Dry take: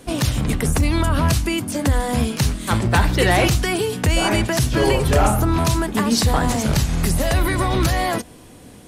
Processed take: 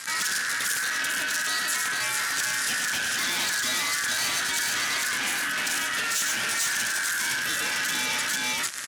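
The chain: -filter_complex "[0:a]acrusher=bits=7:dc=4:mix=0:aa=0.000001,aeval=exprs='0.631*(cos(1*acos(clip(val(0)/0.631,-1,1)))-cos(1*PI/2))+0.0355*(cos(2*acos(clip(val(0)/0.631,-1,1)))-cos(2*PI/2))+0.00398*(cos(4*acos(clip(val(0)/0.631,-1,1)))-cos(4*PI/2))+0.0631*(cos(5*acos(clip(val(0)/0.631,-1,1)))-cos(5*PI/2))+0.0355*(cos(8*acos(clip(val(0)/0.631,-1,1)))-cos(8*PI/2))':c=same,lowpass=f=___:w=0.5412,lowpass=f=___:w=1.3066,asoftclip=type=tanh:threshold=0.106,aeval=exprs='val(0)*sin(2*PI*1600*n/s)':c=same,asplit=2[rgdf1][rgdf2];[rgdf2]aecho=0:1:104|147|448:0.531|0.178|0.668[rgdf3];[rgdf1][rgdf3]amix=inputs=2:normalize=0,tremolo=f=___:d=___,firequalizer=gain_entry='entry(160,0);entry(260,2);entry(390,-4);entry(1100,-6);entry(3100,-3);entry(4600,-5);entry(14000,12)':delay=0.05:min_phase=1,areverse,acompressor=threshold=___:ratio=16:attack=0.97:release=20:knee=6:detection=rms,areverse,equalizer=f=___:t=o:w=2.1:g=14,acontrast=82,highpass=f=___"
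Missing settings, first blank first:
8800, 8800, 5.9, 0.49, 0.0158, 5600, 130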